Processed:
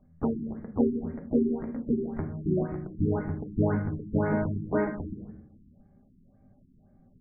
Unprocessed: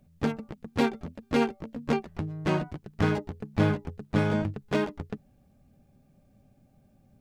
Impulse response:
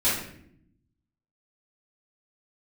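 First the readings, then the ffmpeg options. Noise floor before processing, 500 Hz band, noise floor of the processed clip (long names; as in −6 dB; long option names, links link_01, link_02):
−63 dBFS, 0.0 dB, −61 dBFS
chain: -filter_complex "[0:a]asuperstop=centerf=3500:order=12:qfactor=0.96,asplit=2[link_01][link_02];[1:a]atrim=start_sample=2205[link_03];[link_02][link_03]afir=irnorm=-1:irlink=0,volume=-16dB[link_04];[link_01][link_04]amix=inputs=2:normalize=0,afftfilt=real='re*lt(b*sr/1024,380*pow(3300/380,0.5+0.5*sin(2*PI*1.9*pts/sr)))':imag='im*lt(b*sr/1024,380*pow(3300/380,0.5+0.5*sin(2*PI*1.9*pts/sr)))':win_size=1024:overlap=0.75,volume=-1.5dB"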